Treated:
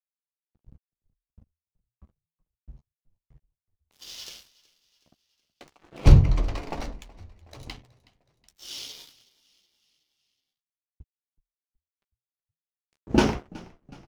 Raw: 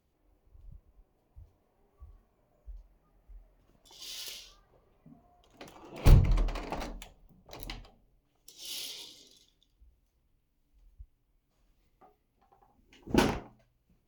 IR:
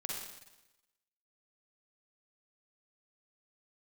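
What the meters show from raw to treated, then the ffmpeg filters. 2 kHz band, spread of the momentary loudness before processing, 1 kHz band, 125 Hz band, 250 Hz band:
+3.5 dB, 24 LU, +3.5 dB, +6.5 dB, +6.0 dB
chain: -filter_complex "[0:a]lowpass=7500,adynamicequalizer=threshold=0.001:dfrequency=5500:dqfactor=3.2:tfrequency=5500:tqfactor=3.2:attack=5:release=100:ratio=0.375:range=2:mode=boostabove:tftype=bell,aeval=exprs='sgn(val(0))*max(abs(val(0))-0.00376,0)':c=same,lowshelf=f=320:g=3.5,asplit=2[s0][s1];[s1]adelay=14,volume=0.251[s2];[s0][s2]amix=inputs=2:normalize=0,asplit=2[s3][s4];[s4]asplit=4[s5][s6][s7][s8];[s5]adelay=371,afreqshift=-41,volume=0.0794[s9];[s6]adelay=742,afreqshift=-82,volume=0.0427[s10];[s7]adelay=1113,afreqshift=-123,volume=0.0232[s11];[s8]adelay=1484,afreqshift=-164,volume=0.0124[s12];[s9][s10][s11][s12]amix=inputs=4:normalize=0[s13];[s3][s13]amix=inputs=2:normalize=0,volume=1.5"

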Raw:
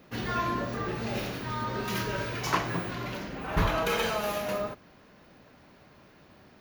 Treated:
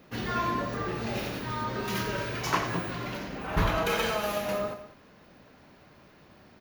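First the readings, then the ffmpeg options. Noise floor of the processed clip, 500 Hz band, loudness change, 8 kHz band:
-57 dBFS, +0.5 dB, +0.5 dB, +0.5 dB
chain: -af "aecho=1:1:88|199:0.266|0.168"

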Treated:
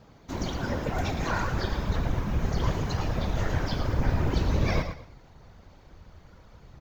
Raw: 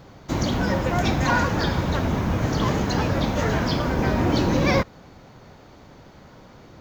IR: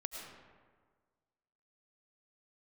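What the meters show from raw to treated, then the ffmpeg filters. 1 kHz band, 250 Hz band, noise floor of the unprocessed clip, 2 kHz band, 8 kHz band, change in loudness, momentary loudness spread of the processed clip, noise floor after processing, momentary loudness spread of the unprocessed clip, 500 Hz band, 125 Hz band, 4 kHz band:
-8.5 dB, -9.5 dB, -48 dBFS, -8.5 dB, -8.0 dB, -6.5 dB, 5 LU, -54 dBFS, 3 LU, -8.5 dB, -4.5 dB, -8.0 dB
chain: -af "aecho=1:1:112|224|336:0.355|0.0958|0.0259,afftfilt=real='hypot(re,im)*cos(2*PI*random(0))':imag='hypot(re,im)*sin(2*PI*random(1))':win_size=512:overlap=0.75,asubboost=boost=4.5:cutoff=110,volume=0.75"

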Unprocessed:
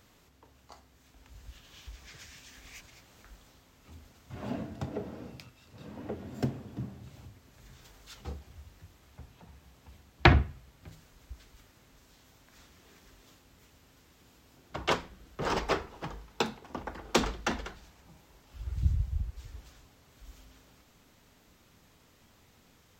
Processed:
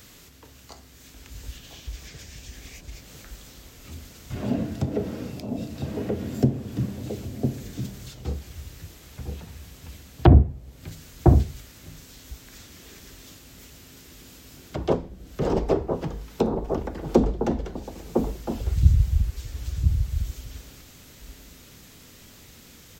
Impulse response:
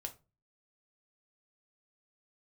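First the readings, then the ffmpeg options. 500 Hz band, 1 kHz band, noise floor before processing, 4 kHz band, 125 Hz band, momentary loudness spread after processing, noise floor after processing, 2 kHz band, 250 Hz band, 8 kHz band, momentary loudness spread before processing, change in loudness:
+10.0 dB, +2.0 dB, -63 dBFS, -3.0 dB, +11.5 dB, 23 LU, -49 dBFS, -7.5 dB, +11.5 dB, +4.0 dB, 22 LU, +7.0 dB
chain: -filter_complex "[0:a]highshelf=f=3900:g=7.5,acrossover=split=730|980[s0][s1][s2];[s0]aecho=1:1:1005:0.562[s3];[s1]aeval=exprs='0.119*(cos(1*acos(clip(val(0)/0.119,-1,1)))-cos(1*PI/2))+0.0473*(cos(3*acos(clip(val(0)/0.119,-1,1)))-cos(3*PI/2))':c=same[s4];[s2]acompressor=threshold=0.00178:ratio=8[s5];[s3][s4][s5]amix=inputs=3:normalize=0,alimiter=level_in=3.98:limit=0.891:release=50:level=0:latency=1,volume=0.891"

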